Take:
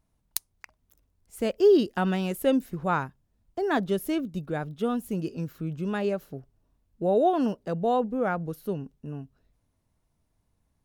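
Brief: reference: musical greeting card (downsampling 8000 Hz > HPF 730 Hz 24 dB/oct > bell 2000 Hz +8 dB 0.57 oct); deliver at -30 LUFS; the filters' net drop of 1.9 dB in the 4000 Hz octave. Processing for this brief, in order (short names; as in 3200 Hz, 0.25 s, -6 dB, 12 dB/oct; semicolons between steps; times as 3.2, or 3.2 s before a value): bell 4000 Hz -4.5 dB; downsampling 8000 Hz; HPF 730 Hz 24 dB/oct; bell 2000 Hz +8 dB 0.57 oct; gain +4.5 dB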